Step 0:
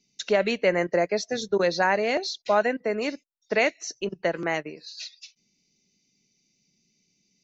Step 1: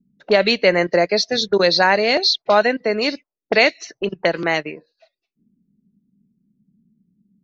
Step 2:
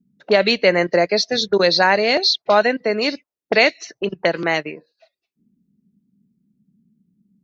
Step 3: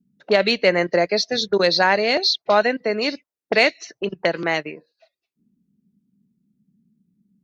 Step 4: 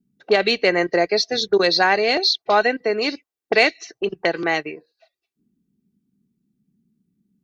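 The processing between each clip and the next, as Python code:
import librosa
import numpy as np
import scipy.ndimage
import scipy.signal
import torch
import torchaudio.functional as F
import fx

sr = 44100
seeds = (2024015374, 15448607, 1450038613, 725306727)

y1 = fx.envelope_lowpass(x, sr, base_hz=210.0, top_hz=4400.0, q=3.2, full_db=-25.5, direction='up')
y1 = y1 * 10.0 ** (6.5 / 20.0)
y2 = scipy.signal.sosfilt(scipy.signal.butter(2, 41.0, 'highpass', fs=sr, output='sos'), y1)
y3 = fx.cheby_harmonics(y2, sr, harmonics=(3,), levels_db=(-26,), full_scale_db=-1.0)
y3 = y3 * 10.0 ** (-1.0 / 20.0)
y4 = y3 + 0.39 * np.pad(y3, (int(2.6 * sr / 1000.0), 0))[:len(y3)]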